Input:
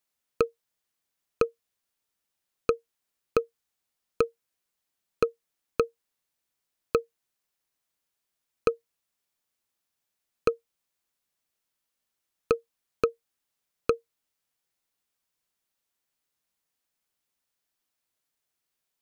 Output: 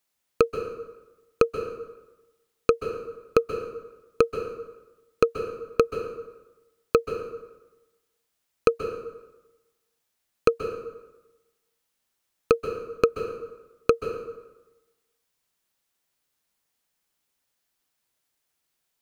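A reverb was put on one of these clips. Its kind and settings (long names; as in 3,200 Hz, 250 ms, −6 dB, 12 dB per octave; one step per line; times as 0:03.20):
dense smooth reverb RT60 1.1 s, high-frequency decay 0.7×, pre-delay 120 ms, DRR 7 dB
level +4.5 dB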